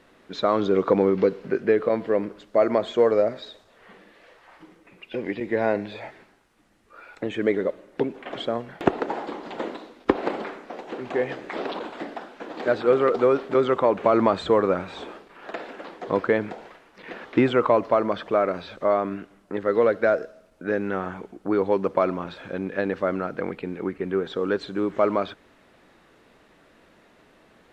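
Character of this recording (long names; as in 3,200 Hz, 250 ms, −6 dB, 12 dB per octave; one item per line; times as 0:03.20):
background noise floor −57 dBFS
spectral slope −5.0 dB per octave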